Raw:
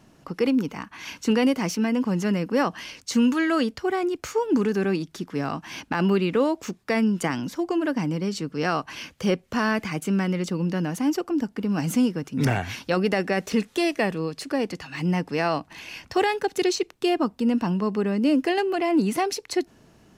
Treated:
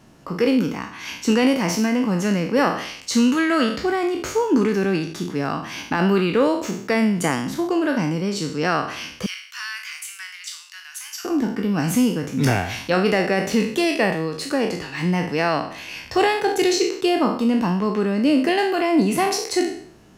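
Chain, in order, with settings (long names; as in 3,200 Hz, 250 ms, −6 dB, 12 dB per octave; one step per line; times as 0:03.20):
peak hold with a decay on every bin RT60 0.59 s
0:09.26–0:11.25: Bessel high-pass filter 2,300 Hz, order 6
level +2.5 dB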